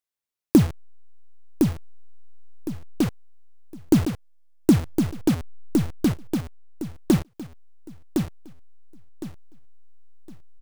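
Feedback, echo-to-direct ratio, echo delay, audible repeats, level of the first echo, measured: 27%, -4.5 dB, 1061 ms, 3, -5.0 dB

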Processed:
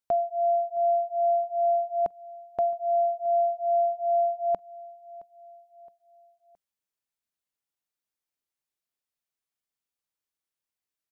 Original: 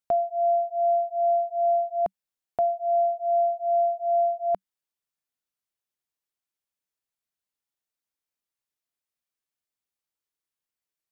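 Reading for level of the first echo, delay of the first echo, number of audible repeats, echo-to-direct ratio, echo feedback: -21.5 dB, 668 ms, 3, -20.5 dB, 49%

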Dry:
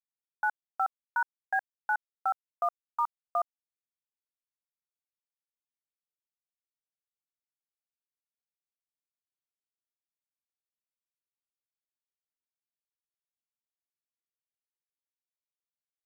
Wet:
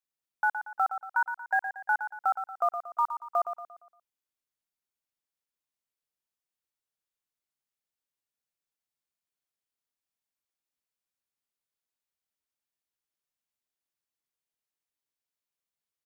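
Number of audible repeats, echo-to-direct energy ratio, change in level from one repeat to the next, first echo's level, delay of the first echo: 4, -8.0 dB, -7.5 dB, -9.0 dB, 116 ms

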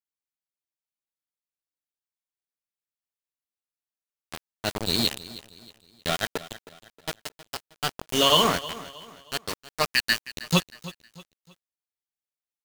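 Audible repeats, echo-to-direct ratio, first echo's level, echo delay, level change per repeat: 3, -16.5 dB, -17.0 dB, 315 ms, -8.5 dB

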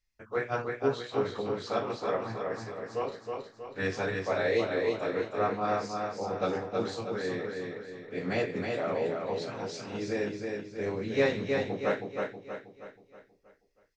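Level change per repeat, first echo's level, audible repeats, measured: -6.5 dB, -4.0 dB, 5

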